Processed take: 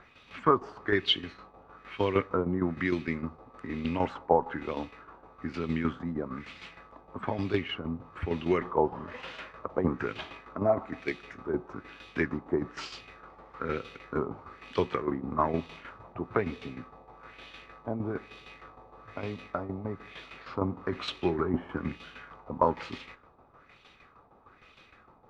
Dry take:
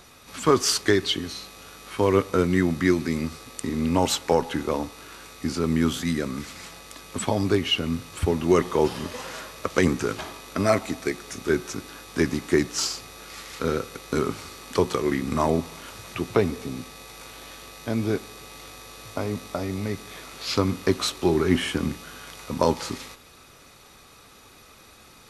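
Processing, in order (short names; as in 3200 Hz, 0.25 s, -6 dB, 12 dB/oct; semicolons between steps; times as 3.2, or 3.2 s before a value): LFO low-pass sine 1.1 Hz 820–3100 Hz; tremolo saw down 6.5 Hz, depth 65%; gain -5 dB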